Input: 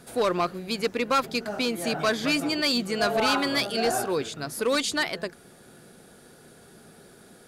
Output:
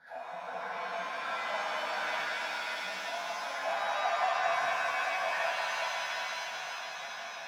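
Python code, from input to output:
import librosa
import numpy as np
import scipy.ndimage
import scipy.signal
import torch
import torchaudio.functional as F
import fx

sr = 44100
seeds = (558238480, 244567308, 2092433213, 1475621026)

p1 = fx.reverse_delay_fb(x, sr, ms=171, feedback_pct=47, wet_db=-10.5)
p2 = fx.cheby1_lowpass(p1, sr, hz=2500.0, order=8, at=(3.21, 3.86))
p3 = fx.over_compress(p2, sr, threshold_db=-32.0, ratio=-0.5)
p4 = fx.fixed_phaser(p3, sr, hz=1800.0, stages=8)
p5 = 10.0 ** (-31.5 / 20.0) * np.tanh(p4 / 10.0 ** (-31.5 / 20.0))
p6 = fx.wah_lfo(p5, sr, hz=5.1, low_hz=680.0, high_hz=1700.0, q=7.6)
p7 = p6 + fx.echo_alternate(p6, sr, ms=181, hz=1100.0, feedback_pct=83, wet_db=-6.5, dry=0)
p8 = fx.rev_shimmer(p7, sr, seeds[0], rt60_s=3.0, semitones=7, shimmer_db=-2, drr_db=-8.5)
y = p8 * librosa.db_to_amplitude(4.5)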